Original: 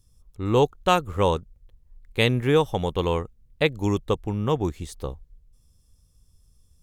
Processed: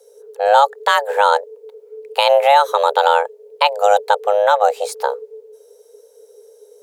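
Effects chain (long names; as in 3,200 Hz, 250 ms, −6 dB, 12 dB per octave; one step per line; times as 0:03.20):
frequency shifter +410 Hz
boost into a limiter +12.5 dB
level −1 dB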